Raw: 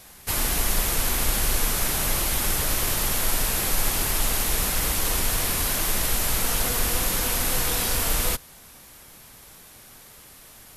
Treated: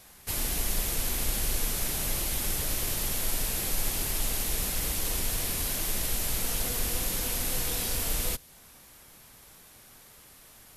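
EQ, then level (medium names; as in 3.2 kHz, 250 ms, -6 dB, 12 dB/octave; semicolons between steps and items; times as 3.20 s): dynamic bell 1.2 kHz, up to -6 dB, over -47 dBFS, Q 0.96; -5.5 dB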